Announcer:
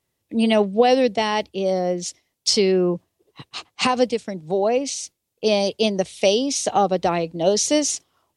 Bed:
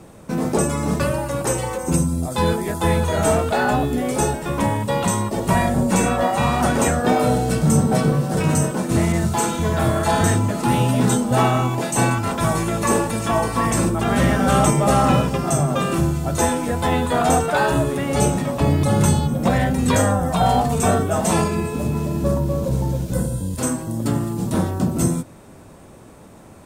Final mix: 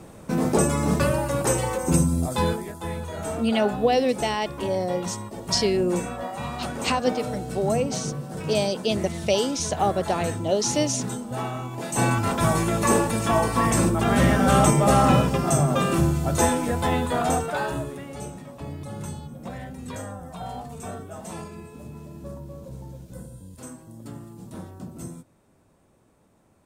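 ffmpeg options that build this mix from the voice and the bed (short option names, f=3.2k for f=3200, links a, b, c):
-filter_complex "[0:a]adelay=3050,volume=-4.5dB[a];[1:a]volume=10.5dB,afade=t=out:st=2.25:d=0.48:silence=0.251189,afade=t=in:st=11.71:d=0.48:silence=0.266073,afade=t=out:st=16.45:d=1.74:silence=0.149624[b];[a][b]amix=inputs=2:normalize=0"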